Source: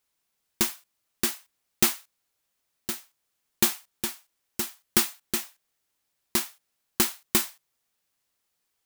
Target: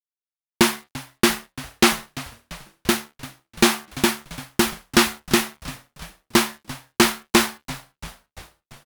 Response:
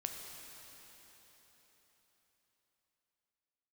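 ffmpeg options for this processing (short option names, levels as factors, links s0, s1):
-filter_complex "[0:a]aemphasis=mode=reproduction:type=75fm,acrossover=split=9000[s0][s1];[s1]acompressor=threshold=0.00501:ratio=4:attack=1:release=60[s2];[s0][s2]amix=inputs=2:normalize=0,aexciter=amount=2.5:drive=2.5:freq=9800,asplit=2[s3][s4];[s4]acompressor=threshold=0.02:ratio=12,volume=1.41[s5];[s3][s5]amix=inputs=2:normalize=0,apsyclip=5.62,asoftclip=type=tanh:threshold=0.501,bandreject=f=73.56:t=h:w=4,bandreject=f=147.12:t=h:w=4,bandreject=f=220.68:t=h:w=4,bandreject=f=294.24:t=h:w=4,bandreject=f=367.8:t=h:w=4,bandreject=f=441.36:t=h:w=4,bandreject=f=514.92:t=h:w=4,bandreject=f=588.48:t=h:w=4,bandreject=f=662.04:t=h:w=4,bandreject=f=735.6:t=h:w=4,bandreject=f=809.16:t=h:w=4,bandreject=f=882.72:t=h:w=4,bandreject=f=956.28:t=h:w=4,bandreject=f=1029.84:t=h:w=4,bandreject=f=1103.4:t=h:w=4,bandreject=f=1176.96:t=h:w=4,bandreject=f=1250.52:t=h:w=4,bandreject=f=1324.08:t=h:w=4,bandreject=f=1397.64:t=h:w=4,bandreject=f=1471.2:t=h:w=4,bandreject=f=1544.76:t=h:w=4,bandreject=f=1618.32:t=h:w=4,bandreject=f=1691.88:t=h:w=4,bandreject=f=1765.44:t=h:w=4,bandreject=f=1839:t=h:w=4,bandreject=f=1912.56:t=h:w=4,bandreject=f=1986.12:t=h:w=4,bandreject=f=2059.68:t=h:w=4,bandreject=f=2133.24:t=h:w=4,aeval=exprs='sgn(val(0))*max(abs(val(0))-0.00631,0)':c=same,asplit=2[s6][s7];[s7]asplit=6[s8][s9][s10][s11][s12][s13];[s8]adelay=342,afreqshift=-92,volume=0.133[s14];[s9]adelay=684,afreqshift=-184,volume=0.0804[s15];[s10]adelay=1026,afreqshift=-276,volume=0.0479[s16];[s11]adelay=1368,afreqshift=-368,volume=0.0288[s17];[s12]adelay=1710,afreqshift=-460,volume=0.0174[s18];[s13]adelay=2052,afreqshift=-552,volume=0.0104[s19];[s14][s15][s16][s17][s18][s19]amix=inputs=6:normalize=0[s20];[s6][s20]amix=inputs=2:normalize=0"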